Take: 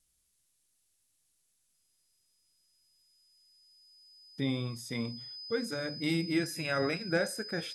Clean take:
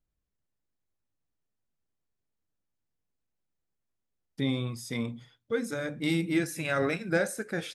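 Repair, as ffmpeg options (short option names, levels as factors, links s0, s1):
-af "bandreject=f=5000:w=30,agate=range=0.0891:threshold=0.000447,asetnsamples=n=441:p=0,asendcmd='3.02 volume volume 3dB',volume=1"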